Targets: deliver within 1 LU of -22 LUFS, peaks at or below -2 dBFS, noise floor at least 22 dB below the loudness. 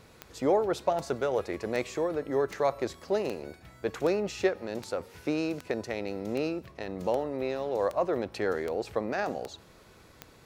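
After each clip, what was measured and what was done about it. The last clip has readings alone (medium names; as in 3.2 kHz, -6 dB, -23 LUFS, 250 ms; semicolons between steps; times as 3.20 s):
clicks found 14; loudness -31.0 LUFS; peak level -13.0 dBFS; loudness target -22.0 LUFS
-> de-click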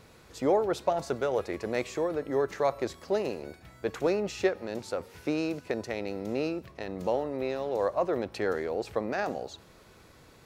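clicks found 0; loudness -31.0 LUFS; peak level -13.0 dBFS; loudness target -22.0 LUFS
-> trim +9 dB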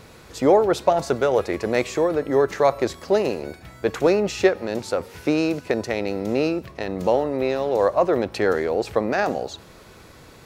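loudness -22.0 LUFS; peak level -4.0 dBFS; noise floor -47 dBFS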